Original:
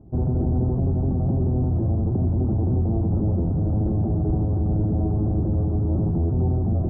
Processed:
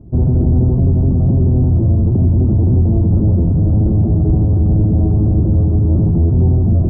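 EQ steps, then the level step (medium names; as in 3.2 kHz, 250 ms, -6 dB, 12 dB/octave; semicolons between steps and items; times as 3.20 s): bass shelf 350 Hz +8 dB; band-stop 790 Hz, Q 12; +2.5 dB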